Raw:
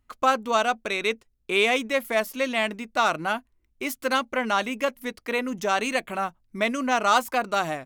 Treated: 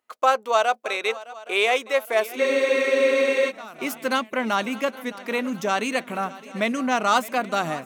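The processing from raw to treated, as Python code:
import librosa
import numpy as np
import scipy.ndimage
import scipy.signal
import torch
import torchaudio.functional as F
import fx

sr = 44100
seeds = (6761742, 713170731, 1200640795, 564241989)

y = fx.echo_swing(x, sr, ms=816, ratio=3, feedback_pct=54, wet_db=-18.5)
y = fx.filter_sweep_highpass(y, sr, from_hz=530.0, to_hz=160.0, start_s=2.02, end_s=3.0, q=1.5)
y = fx.spec_freeze(y, sr, seeds[0], at_s=2.41, hold_s=1.08)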